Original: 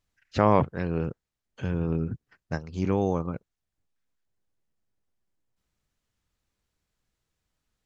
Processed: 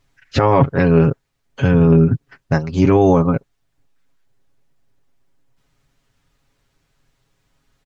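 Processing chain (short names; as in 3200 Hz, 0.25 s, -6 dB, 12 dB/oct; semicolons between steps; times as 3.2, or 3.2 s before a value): high shelf 5000 Hz -7 dB; comb 7.3 ms, depth 69%; maximiser +15.5 dB; gain -1 dB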